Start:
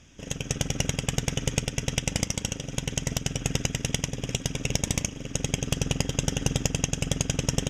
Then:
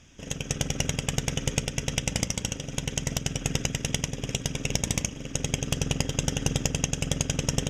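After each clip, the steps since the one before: notches 60/120/180/240/300/360/420/480/540/600 Hz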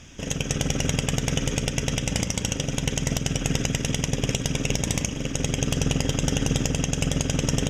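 limiter -18.5 dBFS, peak gain reduction 10.5 dB; gain +8.5 dB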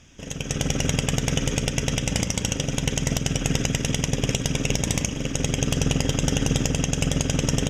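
AGC gain up to 9 dB; gain -6 dB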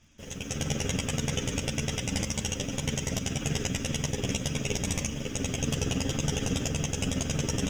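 in parallel at -5 dB: bit-crush 7-bit; on the sum: ensemble effect; gain -6.5 dB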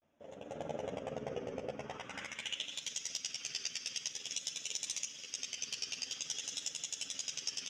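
band-pass sweep 620 Hz -> 4700 Hz, 1.67–2.91; vibrato 0.48 Hz 91 cents; gain +1 dB

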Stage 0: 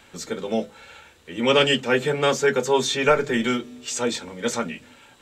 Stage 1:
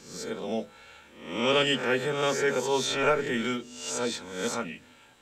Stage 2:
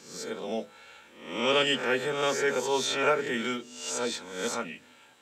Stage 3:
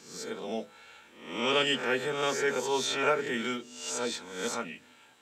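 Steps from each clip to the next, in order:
spectral swells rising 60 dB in 0.63 s; gain -7.5 dB
HPF 240 Hz 6 dB/oct
notch 540 Hz, Q 13; gain -1.5 dB

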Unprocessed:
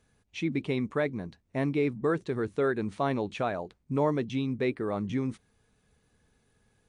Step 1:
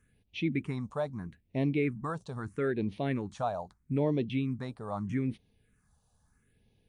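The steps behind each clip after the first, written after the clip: phaser stages 4, 0.78 Hz, lowest notch 330–1400 Hz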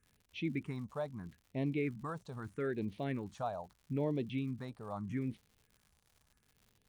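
crackle 140/s -47 dBFS; gain -6 dB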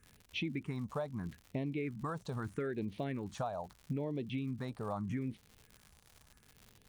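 compressor 6:1, threshold -44 dBFS, peak gain reduction 13.5 dB; gain +9 dB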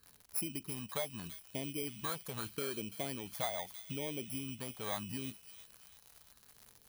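FFT order left unsorted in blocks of 16 samples; low shelf 450 Hz -11.5 dB; thin delay 0.336 s, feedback 45%, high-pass 2900 Hz, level -9 dB; gain +3.5 dB

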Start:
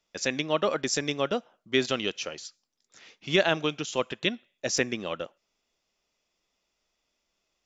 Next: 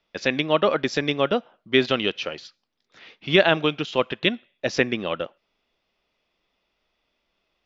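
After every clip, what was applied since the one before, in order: LPF 4100 Hz 24 dB/oct; gain +6 dB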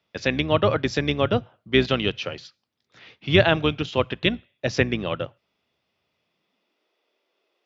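octaver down 2 oct, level -4 dB; high-pass sweep 110 Hz -> 390 Hz, 6.12–6.93; gain -1 dB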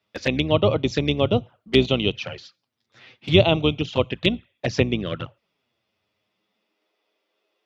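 envelope flanger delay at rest 9.6 ms, full sweep at -20 dBFS; gain +2.5 dB

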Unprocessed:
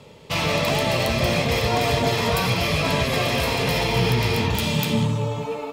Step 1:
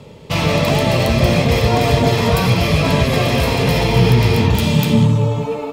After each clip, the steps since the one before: low shelf 490 Hz +7.5 dB; gain +2.5 dB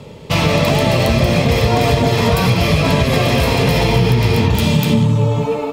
compressor, threshold -13 dBFS, peak gain reduction 5.5 dB; gain +3.5 dB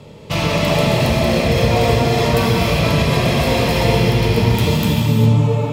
non-linear reverb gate 0.43 s flat, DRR -0.5 dB; gain -4.5 dB

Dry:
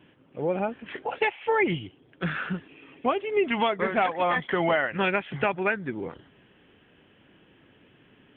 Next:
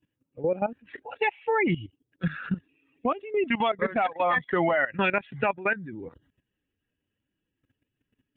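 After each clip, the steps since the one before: per-bin expansion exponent 1.5; notch 3100 Hz, Q 9.1; level quantiser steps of 15 dB; gain +7 dB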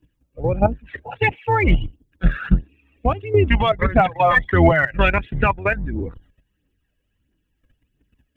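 octaver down 2 oct, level +2 dB; phaser 1.5 Hz, delay 1.9 ms, feedback 50%; gain +6 dB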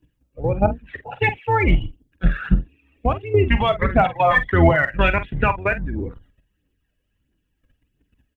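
doubler 47 ms -12 dB; gain -1 dB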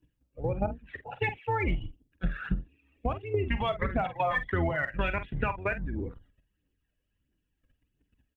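compressor 6:1, threshold -17 dBFS, peak gain reduction 8.5 dB; gain -7.5 dB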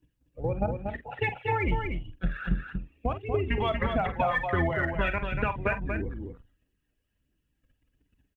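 echo 0.237 s -5.5 dB; gain +1 dB

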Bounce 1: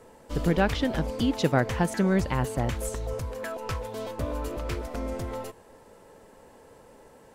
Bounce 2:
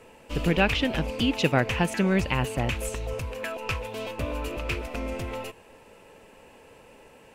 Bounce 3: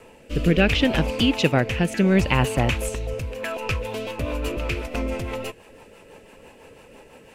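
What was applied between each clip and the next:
bell 2600 Hz +15 dB 0.48 oct
rotary speaker horn 0.7 Hz, later 6 Hz, at 3.3; gain +6.5 dB

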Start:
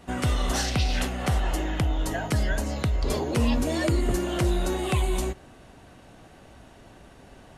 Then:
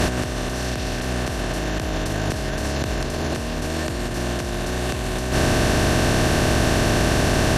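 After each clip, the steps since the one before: per-bin compression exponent 0.2; negative-ratio compressor -21 dBFS, ratio -0.5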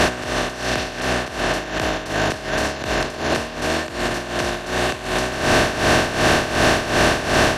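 overdrive pedal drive 15 dB, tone 3300 Hz, clips at -5 dBFS; tremolo 2.7 Hz, depth 73%; gain +2 dB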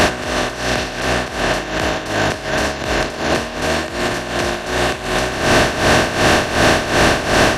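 upward compressor, threshold -22 dBFS; flange 0.47 Hz, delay 9.4 ms, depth 9.2 ms, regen -63%; gain +7.5 dB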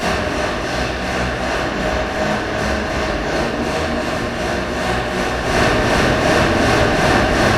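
reverb RT60 2.5 s, pre-delay 3 ms, DRR -16 dB; gain -17 dB

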